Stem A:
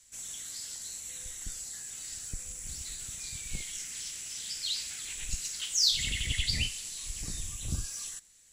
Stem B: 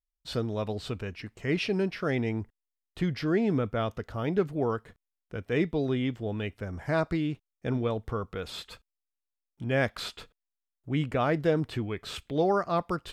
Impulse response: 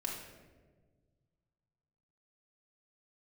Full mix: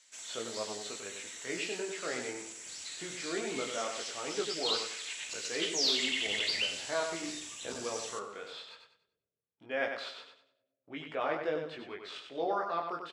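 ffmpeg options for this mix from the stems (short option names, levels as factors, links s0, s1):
-filter_complex "[0:a]asoftclip=type=tanh:threshold=0.0473,volume=1.12,asplit=2[s0][s1];[s1]volume=0.562[s2];[1:a]agate=range=0.398:threshold=0.00355:ratio=16:detection=peak,flanger=delay=17.5:depth=7.3:speed=0.19,volume=0.75,asplit=3[s3][s4][s5];[s4]volume=0.0891[s6];[s5]volume=0.531[s7];[2:a]atrim=start_sample=2205[s8];[s2][s6]amix=inputs=2:normalize=0[s9];[s9][s8]afir=irnorm=-1:irlink=0[s10];[s7]aecho=0:1:96|192|288|384|480:1|0.32|0.102|0.0328|0.0105[s11];[s0][s3][s10][s11]amix=inputs=4:normalize=0,highpass=470,lowpass=4800"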